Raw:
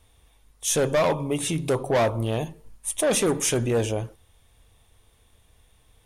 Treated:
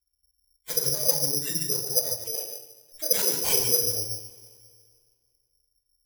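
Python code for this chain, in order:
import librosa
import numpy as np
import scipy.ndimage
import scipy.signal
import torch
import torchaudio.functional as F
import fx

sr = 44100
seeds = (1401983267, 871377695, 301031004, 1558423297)

y = fx.bin_expand(x, sr, power=2.0)
y = fx.env_lowpass(y, sr, base_hz=460.0, full_db=-21.5)
y = fx.steep_highpass(y, sr, hz=350.0, slope=48, at=(2.1, 2.92))
y = fx.over_compress(y, sr, threshold_db=-31.0, ratio=-1.0)
y = fx.filter_lfo_lowpass(y, sr, shape='square', hz=6.4, low_hz=500.0, high_hz=4600.0, q=7.1)
y = y + 10.0 ** (-7.5 / 20.0) * np.pad(y, (int(147 * sr / 1000.0), 0))[:len(y)]
y = fx.rev_double_slope(y, sr, seeds[0], early_s=0.41, late_s=2.1, knee_db=-19, drr_db=-6.5)
y = (np.kron(y[::8], np.eye(8)[0]) * 8)[:len(y)]
y = y * librosa.db_to_amplitude(-15.5)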